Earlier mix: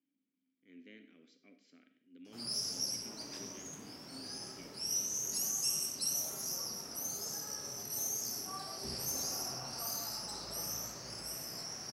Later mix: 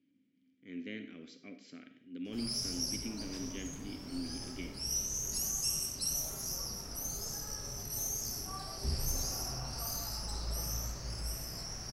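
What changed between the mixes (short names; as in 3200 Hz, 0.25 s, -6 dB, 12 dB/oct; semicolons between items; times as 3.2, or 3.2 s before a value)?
speech +11.5 dB; master: remove HPF 200 Hz 12 dB/oct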